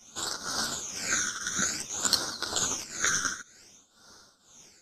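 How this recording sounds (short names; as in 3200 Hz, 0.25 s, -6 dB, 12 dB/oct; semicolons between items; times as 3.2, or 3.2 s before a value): phasing stages 12, 0.54 Hz, lowest notch 800–2500 Hz; tremolo triangle 2 Hz, depth 85%; a shimmering, thickened sound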